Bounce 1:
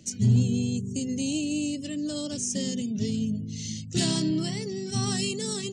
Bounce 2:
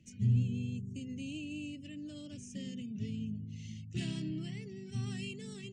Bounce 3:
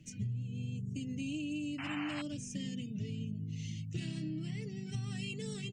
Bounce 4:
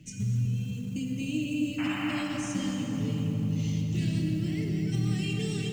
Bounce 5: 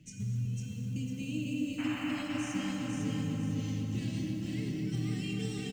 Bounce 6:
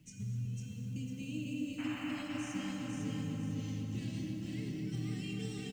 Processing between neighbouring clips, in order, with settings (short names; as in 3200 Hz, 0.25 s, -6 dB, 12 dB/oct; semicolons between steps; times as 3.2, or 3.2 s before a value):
EQ curve 110 Hz 0 dB, 1000 Hz -16 dB, 2600 Hz 0 dB, 4200 Hz -16 dB; gain -6.5 dB
comb 6.6 ms, depth 55%; compressor 16:1, threshold -39 dBFS, peak gain reduction 17 dB; painted sound noise, 1.78–2.22, 670–3100 Hz -48 dBFS; gain +4.5 dB
short-mantissa float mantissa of 4-bit; darkening echo 0.249 s, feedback 79%, low-pass 1500 Hz, level -4 dB; plate-style reverb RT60 2.5 s, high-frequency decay 0.9×, DRR 2.5 dB; gain +5 dB
feedback echo 0.502 s, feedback 39%, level -3 dB; gain -6 dB
requantised 12-bit, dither none; gain -4.5 dB